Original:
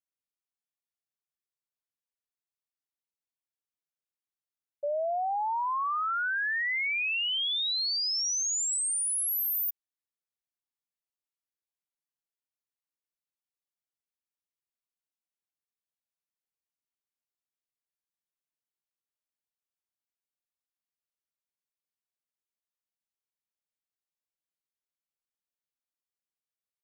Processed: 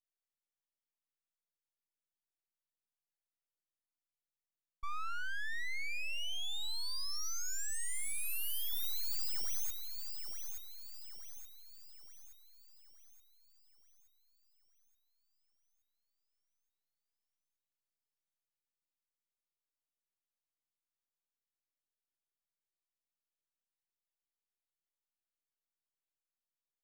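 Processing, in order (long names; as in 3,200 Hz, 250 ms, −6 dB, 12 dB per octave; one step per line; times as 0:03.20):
delay with a high-pass on its return 874 ms, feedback 48%, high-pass 3,300 Hz, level −6.5 dB
full-wave rectification
level −5 dB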